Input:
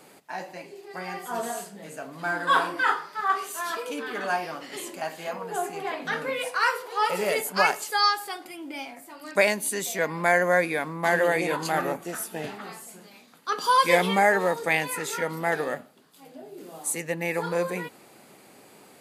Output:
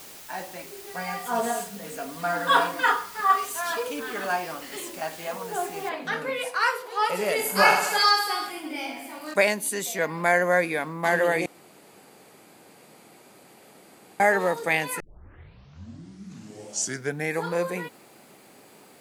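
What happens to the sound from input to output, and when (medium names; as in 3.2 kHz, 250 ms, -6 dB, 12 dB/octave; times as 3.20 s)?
0.94–3.88 s: comb 4.2 ms, depth 92%
5.89 s: noise floor step -45 dB -67 dB
7.37–9.34 s: reverse bouncing-ball echo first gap 20 ms, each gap 1.3×, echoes 7, each echo -2 dB
11.46–14.20 s: room tone
15.00 s: tape start 2.46 s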